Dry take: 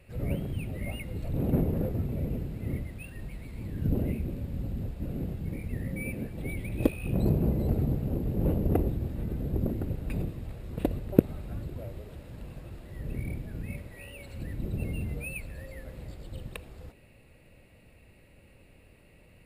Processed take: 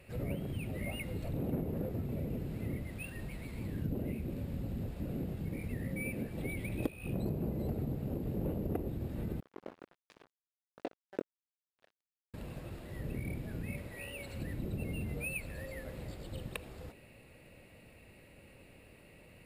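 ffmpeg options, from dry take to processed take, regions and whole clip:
ffmpeg -i in.wav -filter_complex "[0:a]asettb=1/sr,asplit=3[link_01][link_02][link_03];[link_01]atrim=end=9.404[link_04];[link_02]atrim=start=9.4:end=12.34,asetpts=PTS-STARTPTS,afade=type=in:duration=0.004:curve=qsin,afade=type=out:start_time=2.936:duration=0.004:curve=qsin,flanger=delay=18:depth=4.3:speed=1.4,highpass=470,lowpass=3400,aeval=exprs='sgn(val(0))*max(abs(val(0))-0.0075,0)':channel_layout=same[link_05];[link_03]atrim=start=12.336[link_06];[link_04][link_05]acrossfade=duration=0.004:curve1=hsin:curve2=qsin[link_07];[link_07][link_06]acrossfade=duration=0.004:curve1=qsin:curve2=hsin,lowshelf=frequency=85:gain=-9.5,acompressor=threshold=-37dB:ratio=3,volume=2dB" out.wav

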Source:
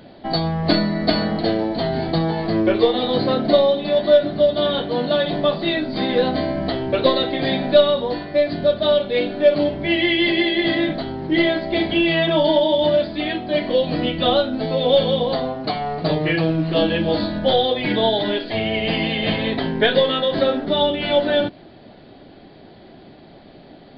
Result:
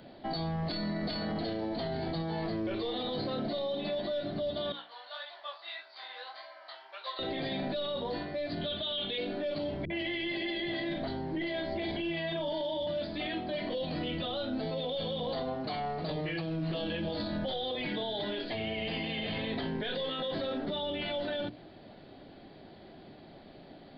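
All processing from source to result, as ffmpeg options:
ffmpeg -i in.wav -filter_complex "[0:a]asettb=1/sr,asplit=3[link_01][link_02][link_03];[link_01]atrim=end=4.724[link_04];[link_02]atrim=start=4.72:end=7.19,asetpts=PTS-STARTPTS,afade=type=in:duration=0.004:curve=qsin,afade=type=out:start_time=2.466:duration=0.004:curve=qsin,highpass=frequency=1000:width=0.5412,highpass=frequency=1000:width=1.3066,equalizer=frequency=2800:width_type=o:width=2.5:gain=-8,flanger=delay=17:depth=7.3:speed=1.7[link_05];[link_03]atrim=start=7.186[link_06];[link_04][link_05]acrossfade=duration=0.004:curve1=hsin:curve2=qsin[link_07];[link_07][link_06]acrossfade=duration=0.004:curve1=qsin:curve2=hsin,asettb=1/sr,asplit=3[link_08][link_09][link_10];[link_08]atrim=end=8.614[link_11];[link_09]atrim=start=8.61:end=9.18,asetpts=PTS-STARTPTS,afade=type=in:duration=0.004:curve=qsin,afade=type=out:start_time=0.566:duration=0.004:curve=qsin,lowpass=frequency=3300:width_type=q:width=7.1,bandreject=frequency=560:width=7.5[link_12];[link_10]atrim=start=9.176[link_13];[link_11][link_12]acrossfade=duration=0.004:curve1=hsin:curve2=qsin[link_14];[link_14][link_13]acrossfade=duration=0.004:curve1=qsin:curve2=hsin,asettb=1/sr,asplit=3[link_15][link_16][link_17];[link_15]atrim=end=9.854[link_18];[link_16]atrim=start=9.85:end=12.87,asetpts=PTS-STARTPTS,afade=type=in:duration=0.004:curve=qsin,afade=type=out:start_time=3.016:duration=0.004:curve=qsin,bandreject=frequency=1300:width=24,acrossover=split=230|3400[link_19][link_20][link_21];[link_20]adelay=50[link_22];[link_21]adelay=90[link_23];[link_19][link_22][link_23]amix=inputs=3:normalize=0,atrim=end_sample=133182[link_24];[link_17]atrim=start=12.866[link_25];[link_18][link_24]acrossfade=duration=0.004:curve1=hsin:curve2=qsin[link_26];[link_26][link_25]acrossfade=duration=0.004:curve1=qsin:curve2=hsin,acrossover=split=120|3000[link_27][link_28][link_29];[link_28]acompressor=threshold=-21dB:ratio=2.5[link_30];[link_27][link_30][link_29]amix=inputs=3:normalize=0,bandreject=frequency=60:width_type=h:width=6,bandreject=frequency=120:width_type=h:width=6,bandreject=frequency=180:width_type=h:width=6,bandreject=frequency=240:width_type=h:width=6,bandreject=frequency=300:width_type=h:width=6,bandreject=frequency=360:width_type=h:width=6,bandreject=frequency=420:width_type=h:width=6,bandreject=frequency=480:width_type=h:width=6,alimiter=limit=-20dB:level=0:latency=1:release=13,volume=-7dB" out.wav

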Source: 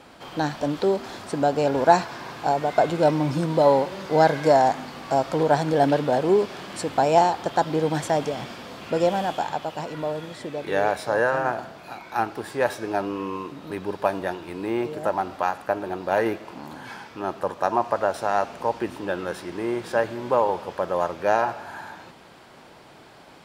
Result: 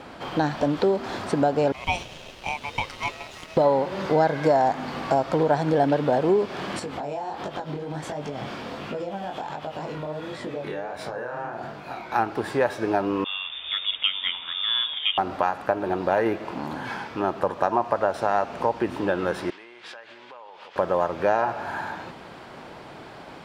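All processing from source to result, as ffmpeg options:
ffmpeg -i in.wav -filter_complex "[0:a]asettb=1/sr,asplit=3[link_01][link_02][link_03];[link_01]atrim=end=1.724[link_04];[link_02]atrim=start=1.72:end=3.57,asetpts=PTS-STARTPTS,afade=type=in:duration=0.004:curve=qsin,afade=type=out:start_time=1.846:duration=0.004:curve=qsin,highpass=1300,aeval=exprs='val(0)*sin(2*PI*1600*n/s)':channel_layout=same,aeval=exprs='sgn(val(0))*max(abs(val(0))-0.00299,0)':channel_layout=same[link_05];[link_03]atrim=start=3.566[link_06];[link_04][link_05]acrossfade=duration=0.004:curve1=hsin:curve2=qsin[link_07];[link_07][link_06]acrossfade=duration=0.004:curve1=qsin:curve2=hsin,asettb=1/sr,asplit=3[link_08][link_09][link_10];[link_08]atrim=end=6.794[link_11];[link_09]atrim=start=6.79:end=12.11,asetpts=PTS-STARTPTS,afade=type=in:duration=0.004:curve=qsin,afade=type=out:start_time=5.316:duration=0.004:curve=qsin,asplit=2[link_12][link_13];[link_13]adelay=14,volume=-12dB[link_14];[link_12][link_14]amix=inputs=2:normalize=0,atrim=end_sample=234612,acompressor=threshold=-31dB:ratio=16:attack=3.2:release=140:knee=1:detection=peak,flanger=delay=20:depth=7.8:speed=1.4[link_15];[link_10]atrim=start=12.106[link_16];[link_11][link_15]acrossfade=duration=0.004:curve1=hsin:curve2=qsin[link_17];[link_17][link_16]acrossfade=duration=0.004:curve1=qsin:curve2=hsin,asettb=1/sr,asplit=3[link_18][link_19][link_20];[link_18]atrim=end=13.244[link_21];[link_19]atrim=start=13.24:end=15.18,asetpts=PTS-STARTPTS,afade=type=in:duration=0.004:curve=qsin,afade=type=out:start_time=1.936:duration=0.004:curve=qsin,lowpass=frequency=3200:width_type=q:width=0.5098,lowpass=frequency=3200:width_type=q:width=0.6013,lowpass=frequency=3200:width_type=q:width=0.9,lowpass=frequency=3200:width_type=q:width=2.563,afreqshift=-3800,adynamicequalizer=threshold=0.0178:dfrequency=1600:dqfactor=0.7:tfrequency=1600:tqfactor=0.7:attack=5:release=100:ratio=0.375:range=2.5:mode=cutabove:tftype=highshelf[link_22];[link_20]atrim=start=15.176[link_23];[link_21][link_22]acrossfade=duration=0.004:curve1=hsin:curve2=qsin[link_24];[link_24][link_23]acrossfade=duration=0.004:curve1=qsin:curve2=hsin,asettb=1/sr,asplit=3[link_25][link_26][link_27];[link_25]atrim=end=19.504[link_28];[link_26]atrim=start=19.5:end=20.76,asetpts=PTS-STARTPTS,afade=type=in:duration=0.004:curve=qsin,afade=type=out:start_time=1.256:duration=0.004:curve=qsin,acompressor=threshold=-33dB:ratio=10:attack=3.2:release=140:knee=1:detection=peak,bandpass=frequency=3100:width_type=q:width=1.1[link_29];[link_27]atrim=start=20.756[link_30];[link_28][link_29]acrossfade=duration=0.004:curve1=hsin:curve2=qsin[link_31];[link_31][link_30]acrossfade=duration=0.004:curve1=qsin:curve2=hsin,highshelf=frequency=5300:gain=-11.5,acompressor=threshold=-28dB:ratio=2.5,volume=7dB" out.wav

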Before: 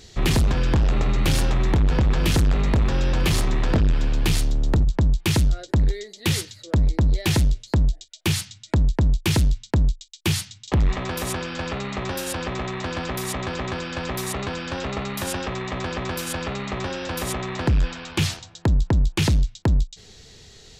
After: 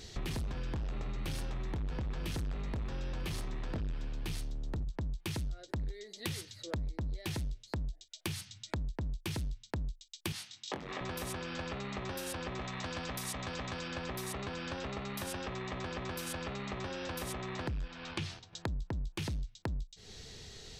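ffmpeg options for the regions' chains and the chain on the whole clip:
ffmpeg -i in.wav -filter_complex "[0:a]asettb=1/sr,asplit=3[link_01][link_02][link_03];[link_01]atrim=end=10.324[link_04];[link_02]atrim=start=10.32:end=11.01,asetpts=PTS-STARTPTS,afade=type=in:duration=0.004:curve=qsin,afade=type=out:start_time=0.686:duration=0.004:curve=qsin,highpass=300,highshelf=frequency=8700:gain=-9,asplit=2[link_05][link_06];[link_06]adelay=23,volume=-4dB[link_07];[link_05][link_07]amix=inputs=2:normalize=0,atrim=end_sample=30429[link_08];[link_03]atrim=start=11.006[link_09];[link_04][link_08]acrossfade=duration=0.004:curve1=hsin:curve2=qsin[link_10];[link_10][link_09]acrossfade=duration=0.004:curve1=qsin:curve2=hsin,asettb=1/sr,asplit=3[link_11][link_12][link_13];[link_11]atrim=end=12.614[link_14];[link_12]atrim=start=12.61:end=13.88,asetpts=PTS-STARTPTS,afade=type=in:duration=0.004:curve=qsin,afade=type=out:start_time=1.266:duration=0.004:curve=qsin,equalizer=frequency=7300:width=0.49:gain=5,bandreject=frequency=370:width=7.3[link_15];[link_13]atrim=start=13.876[link_16];[link_14][link_15]acrossfade=duration=0.004:curve1=hsin:curve2=qsin[link_17];[link_17][link_16]acrossfade=duration=0.004:curve1=qsin:curve2=hsin,asettb=1/sr,asplit=3[link_18][link_19][link_20];[link_18]atrim=end=17.884[link_21];[link_19]atrim=start=17.88:end=18.53,asetpts=PTS-STARTPTS,afade=type=in:duration=0.004:curve=qsin,afade=type=out:start_time=0.646:duration=0.004:curve=qsin,agate=range=-7dB:threshold=-40dB:ratio=16:release=100:detection=peak,lowpass=5800,bandreject=frequency=60:width_type=h:width=6,bandreject=frequency=120:width_type=h:width=6,bandreject=frequency=180:width_type=h:width=6,bandreject=frequency=240:width_type=h:width=6,bandreject=frequency=300:width_type=h:width=6,bandreject=frequency=360:width_type=h:width=6,bandreject=frequency=420:width_type=h:width=6,bandreject=frequency=480:width_type=h:width=6,bandreject=frequency=540:width_type=h:width=6[link_22];[link_20]atrim=start=18.526[link_23];[link_21][link_22]acrossfade=duration=0.004:curve1=hsin:curve2=qsin[link_24];[link_24][link_23]acrossfade=duration=0.004:curve1=qsin:curve2=hsin,bandreject=frequency=7100:width=14,acompressor=threshold=-35dB:ratio=5,volume=-2.5dB" out.wav

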